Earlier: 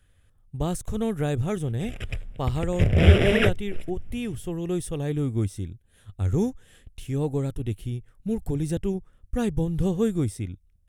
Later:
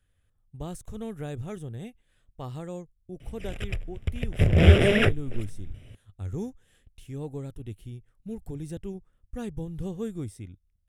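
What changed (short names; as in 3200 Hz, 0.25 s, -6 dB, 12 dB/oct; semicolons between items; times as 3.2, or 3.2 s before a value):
speech -9.5 dB; background: entry +1.60 s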